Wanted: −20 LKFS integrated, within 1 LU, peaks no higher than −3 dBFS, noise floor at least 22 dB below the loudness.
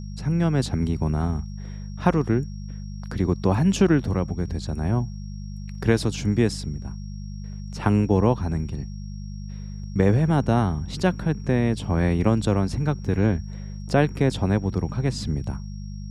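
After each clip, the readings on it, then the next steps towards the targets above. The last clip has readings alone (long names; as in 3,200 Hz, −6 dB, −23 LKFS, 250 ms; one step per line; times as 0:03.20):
mains hum 50 Hz; hum harmonics up to 200 Hz; level of the hum −31 dBFS; interfering tone 5,600 Hz; level of the tone −52 dBFS; integrated loudness −23.5 LKFS; sample peak −5.5 dBFS; target loudness −20.0 LKFS
→ hum removal 50 Hz, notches 4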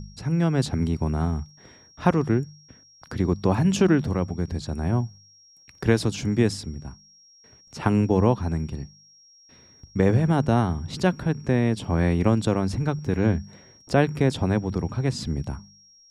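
mains hum none found; interfering tone 5,600 Hz; level of the tone −52 dBFS
→ notch filter 5,600 Hz, Q 30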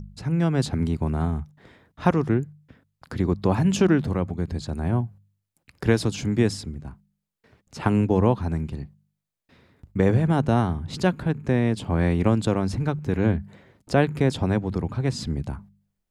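interfering tone none found; integrated loudness −24.0 LKFS; sample peak −5.5 dBFS; target loudness −20.0 LKFS
→ level +4 dB
brickwall limiter −3 dBFS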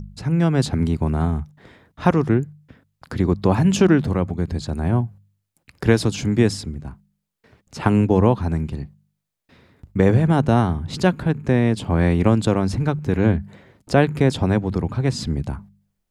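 integrated loudness −20.0 LKFS; sample peak −3.0 dBFS; background noise floor −76 dBFS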